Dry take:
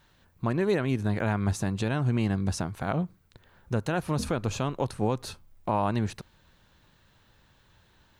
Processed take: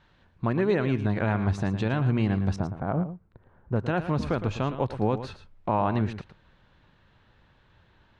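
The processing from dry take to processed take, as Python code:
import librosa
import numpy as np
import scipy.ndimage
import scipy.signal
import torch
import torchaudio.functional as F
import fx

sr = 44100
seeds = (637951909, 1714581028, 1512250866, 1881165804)

y = fx.lowpass(x, sr, hz=fx.steps((0.0, 3500.0), (2.56, 1100.0), (3.76, 3000.0)), slope=12)
y = y + 10.0 ** (-11.5 / 20.0) * np.pad(y, (int(112 * sr / 1000.0), 0))[:len(y)]
y = y * 10.0 ** (1.5 / 20.0)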